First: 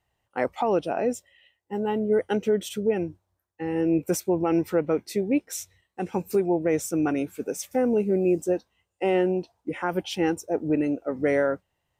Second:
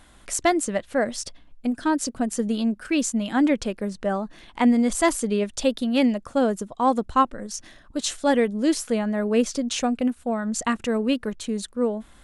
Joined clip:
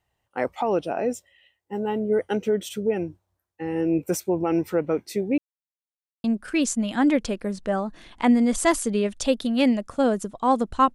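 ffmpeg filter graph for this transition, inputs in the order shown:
-filter_complex "[0:a]apad=whole_dur=10.94,atrim=end=10.94,asplit=2[s0][s1];[s0]atrim=end=5.38,asetpts=PTS-STARTPTS,afade=t=out:st=5.376:d=0.004:c=hsin[s2];[s1]atrim=start=5.38:end=6.24,asetpts=PTS-STARTPTS,volume=0[s3];[1:a]atrim=start=2.61:end=7.31,asetpts=PTS-STARTPTS,afade=t=in:d=0.004:c=hsin[s4];[s2][s3][s4]concat=n=3:v=0:a=1"

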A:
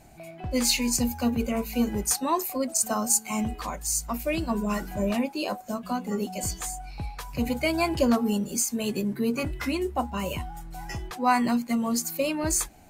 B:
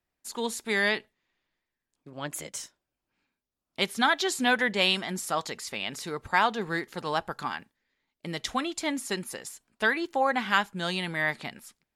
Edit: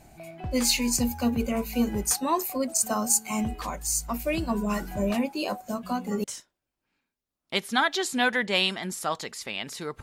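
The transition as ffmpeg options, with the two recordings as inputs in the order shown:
-filter_complex "[0:a]apad=whole_dur=10.02,atrim=end=10.02,atrim=end=6.242[s0];[1:a]atrim=start=2.498:end=6.28[s1];[s0][s1]acrossfade=d=0.004:c1=hsin:c2=hsin"

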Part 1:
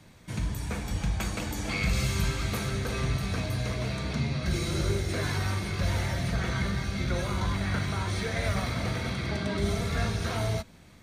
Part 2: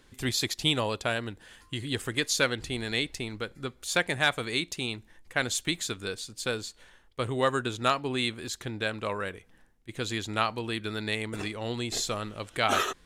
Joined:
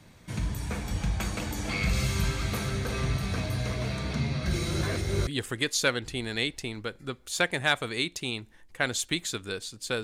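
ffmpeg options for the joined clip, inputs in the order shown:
-filter_complex "[0:a]apad=whole_dur=10.03,atrim=end=10.03,asplit=2[s0][s1];[s0]atrim=end=4.832[s2];[s1]atrim=start=4.828:end=5.272,asetpts=PTS-STARTPTS,areverse[s3];[1:a]atrim=start=1.828:end=6.59[s4];[s2][s3]acrossfade=d=0.004:c1=hsin:c2=hsin[s5];[s5][s4]acrossfade=d=0.004:c1=hsin:c2=hsin"

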